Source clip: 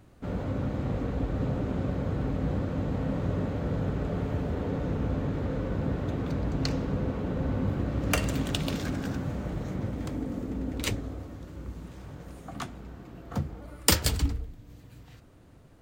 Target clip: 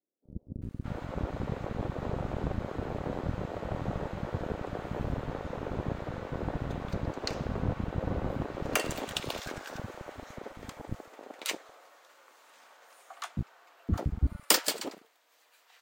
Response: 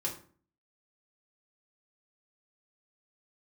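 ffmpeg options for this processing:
-filter_complex "[0:a]acrossover=split=630[s0][s1];[s0]acrusher=bits=3:mix=0:aa=0.5[s2];[s2][s1]amix=inputs=2:normalize=0,acrossover=split=290[s3][s4];[s4]adelay=620[s5];[s3][s5]amix=inputs=2:normalize=0,volume=0.891"

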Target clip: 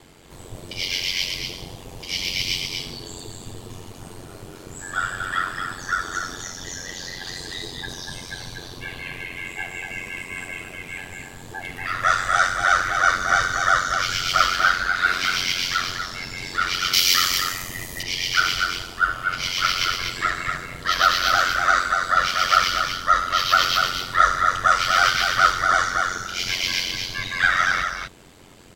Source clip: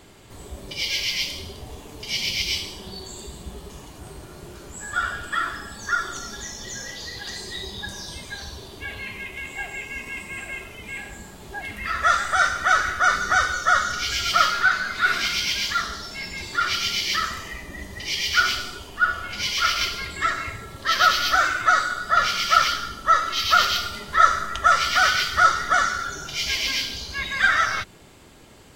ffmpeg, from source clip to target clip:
-filter_complex "[0:a]asplit=2[s0][s1];[s1]aecho=0:1:241:0.596[s2];[s0][s2]amix=inputs=2:normalize=0,aeval=exprs='val(0)*sin(2*PI*45*n/s)':c=same,asettb=1/sr,asplit=3[s3][s4][s5];[s3]atrim=end=16.934[s6];[s4]atrim=start=16.93:end=18.03,asetpts=PTS-STARTPTS,afade=t=in:d=0.004:c=qsin,afade=t=out:st=1.096:d=0.004:c=qsin,aemphasis=mode=production:type=75kf[s7];[s5]atrim=start=18.026[s8];[s6][s7]acrossfade=d=0.004:c1=hsin:c2=qsin[s9];[s9][s8]acrossfade=d=0.004:c1=qsin:c2=hsin,volume=1.33"

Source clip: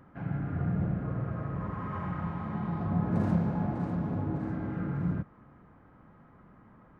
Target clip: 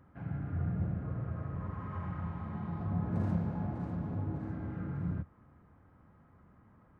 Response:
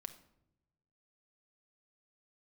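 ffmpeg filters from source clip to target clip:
-af "equalizer=f=82:t=o:w=0.75:g=9.5,volume=0.447"

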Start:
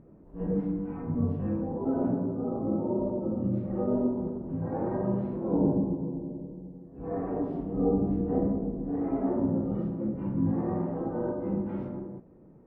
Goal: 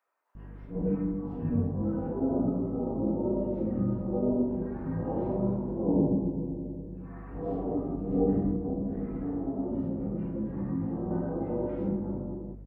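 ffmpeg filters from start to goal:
-filter_complex "[0:a]aeval=exprs='val(0)+0.00708*(sin(2*PI*50*n/s)+sin(2*PI*2*50*n/s)/2+sin(2*PI*3*50*n/s)/3+sin(2*PI*4*50*n/s)/4+sin(2*PI*5*50*n/s)/5)':c=same,acrossover=split=1100[s0][s1];[s0]adelay=350[s2];[s2][s1]amix=inputs=2:normalize=0,asettb=1/sr,asplit=3[s3][s4][s5];[s3]atrim=end=8.554[s6];[s4]atrim=start=8.55:end=11.11,asetpts=PTS-STARTPTS,afade=t=in:d=0.004:c=qsin,afade=t=out:st=2.556:d=0.004:c=qsin,acrossover=split=280|1100[s7][s8][s9];[s7]acompressor=threshold=0.0282:ratio=4[s10];[s8]acompressor=threshold=0.0141:ratio=4[s11];[s9]acompressor=threshold=0.00126:ratio=4[s12];[s10][s11][s12]amix=inputs=3:normalize=0[s13];[s5]atrim=start=11.106[s14];[s6][s13]acrossfade=d=0.004:c1=hsin:c2=qsin[s15];[s15][s14]acrossfade=d=0.004:c1=qsin:c2=hsin"

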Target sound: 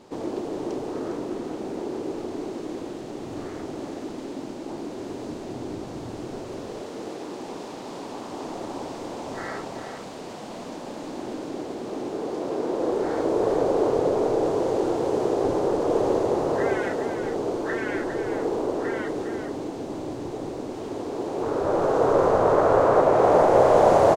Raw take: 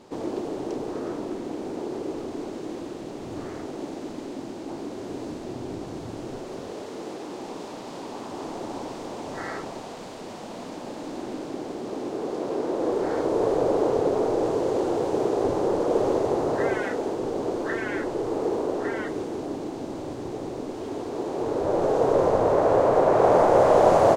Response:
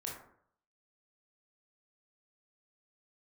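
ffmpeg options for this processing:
-filter_complex "[0:a]asettb=1/sr,asplit=3[s0][s1][s2];[s0]atrim=end=21.424[s3];[s1]atrim=start=21.42:end=23.02,asetpts=PTS-STARTPTS,afade=t=in:d=0.004:c=qsin,afade=t=out:st=1.596:d=0.004:c=qsin,equalizer=f=1300:w=2:g=7[s4];[s2]atrim=start=23.016[s5];[s3][s4]acrossfade=d=0.004:c1=hsin:c2=qsin[s6];[s6][s5]acrossfade=d=0.004:c1=qsin:c2=hsin,aecho=1:1:406:0.398"

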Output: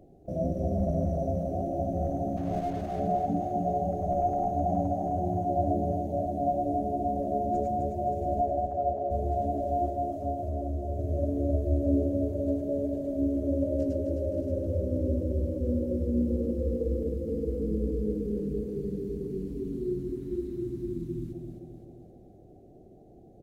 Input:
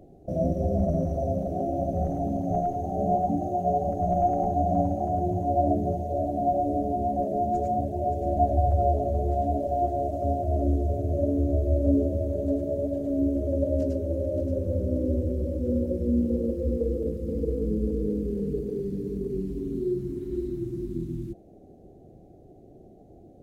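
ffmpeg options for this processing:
-filter_complex "[0:a]asplit=3[s0][s1][s2];[s0]afade=t=out:st=2.36:d=0.02[s3];[s1]aeval=exprs='sgn(val(0))*max(abs(val(0))-0.00631,0)':c=same,afade=t=in:st=2.36:d=0.02,afade=t=out:st=2.99:d=0.02[s4];[s2]afade=t=in:st=2.99:d=0.02[s5];[s3][s4][s5]amix=inputs=3:normalize=0,asettb=1/sr,asplit=3[s6][s7][s8];[s6]atrim=end=8.414[s9];[s7]atrim=start=8.41:end=9.11,asetpts=PTS-STARTPTS,afade=t=in:d=0.004:c=qsin,afade=t=out:st=0.696:d=0.004:c=qsin,bandpass=f=830:t=q:w=0.51:csg=0[s10];[s8]atrim=start=9.106[s11];[s9][s10]acrossfade=d=0.004:c1=hsin:c2=qsin[s12];[s12][s11]acrossfade=d=0.004:c1=qsin:c2=hsin,asplit=3[s13][s14][s15];[s13]afade=t=out:st=9.89:d=0.02[s16];[s14]acompressor=threshold=0.0501:ratio=6,afade=t=in:st=9.89:d=0.02,afade=t=out:st=10.98:d=0.02[s17];[s15]afade=t=in:st=10.98:d=0.02[s18];[s16][s17][s18]amix=inputs=3:normalize=0,aecho=1:1:260|520|780|1040|1300|1560|1820:0.501|0.276|0.152|0.0834|0.0459|0.0252|0.0139,volume=0.631"

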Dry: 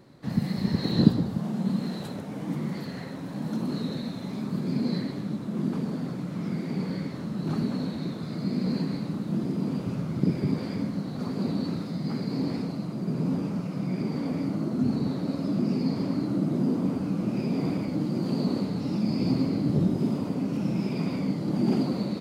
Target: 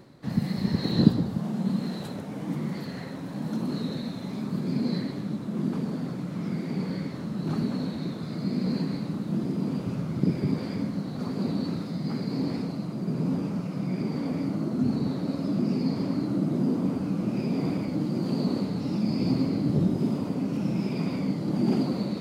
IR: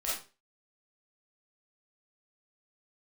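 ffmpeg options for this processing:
-af "areverse,acompressor=mode=upward:threshold=0.02:ratio=2.5,areverse"

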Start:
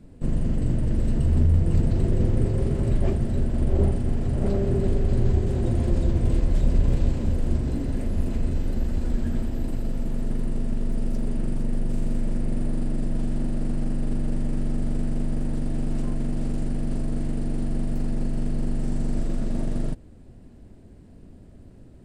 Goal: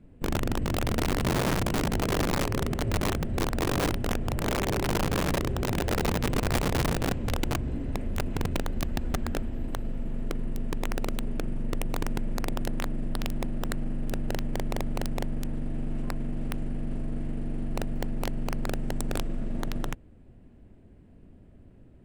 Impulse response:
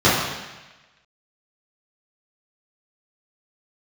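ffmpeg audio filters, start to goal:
-af "highshelf=f=3600:t=q:w=1.5:g=-7,aeval=exprs='(mod(5.96*val(0)+1,2)-1)/5.96':c=same,volume=0.531"

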